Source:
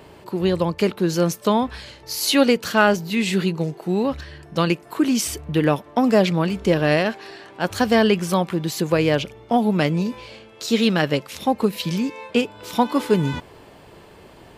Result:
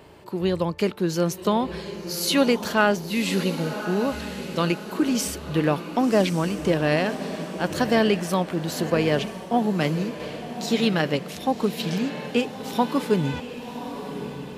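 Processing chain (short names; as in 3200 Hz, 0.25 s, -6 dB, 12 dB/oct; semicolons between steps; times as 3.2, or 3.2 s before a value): diffused feedback echo 1.094 s, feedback 48%, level -10 dB; 8.9–10.2 three-band expander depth 40%; gain -3.5 dB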